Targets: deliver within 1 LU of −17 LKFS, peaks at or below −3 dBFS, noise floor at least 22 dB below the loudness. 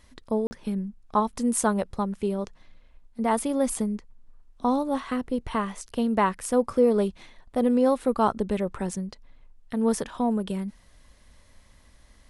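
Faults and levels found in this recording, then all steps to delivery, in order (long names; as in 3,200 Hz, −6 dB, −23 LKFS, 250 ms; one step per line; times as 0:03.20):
number of dropouts 1; longest dropout 40 ms; integrated loudness −26.5 LKFS; sample peak −9.5 dBFS; target loudness −17.0 LKFS
→ repair the gap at 0:00.47, 40 ms
level +9.5 dB
brickwall limiter −3 dBFS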